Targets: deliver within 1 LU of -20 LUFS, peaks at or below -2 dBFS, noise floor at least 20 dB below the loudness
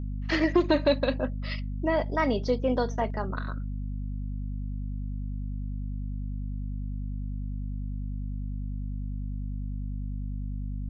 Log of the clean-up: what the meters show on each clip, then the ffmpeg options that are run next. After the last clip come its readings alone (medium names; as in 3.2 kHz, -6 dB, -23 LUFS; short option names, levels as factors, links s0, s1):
hum 50 Hz; highest harmonic 250 Hz; hum level -30 dBFS; loudness -31.0 LUFS; peak level -10.5 dBFS; loudness target -20.0 LUFS
-> -af "bandreject=f=50:t=h:w=6,bandreject=f=100:t=h:w=6,bandreject=f=150:t=h:w=6,bandreject=f=200:t=h:w=6,bandreject=f=250:t=h:w=6"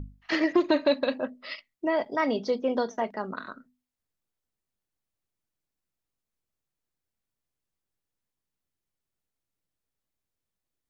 hum not found; loudness -27.5 LUFS; peak level -10.5 dBFS; loudness target -20.0 LUFS
-> -af "volume=2.37"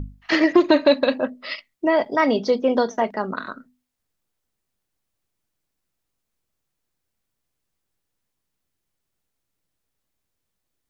loudness -20.0 LUFS; peak level -3.0 dBFS; noise floor -79 dBFS